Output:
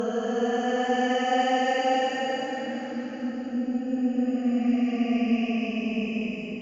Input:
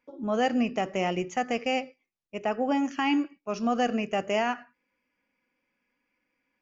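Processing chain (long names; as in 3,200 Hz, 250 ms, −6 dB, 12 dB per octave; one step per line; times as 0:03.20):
extreme stretch with random phases 21×, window 0.10 s, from 0:00.37
harmonic generator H 2 −32 dB, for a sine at −11 dBFS
level −1.5 dB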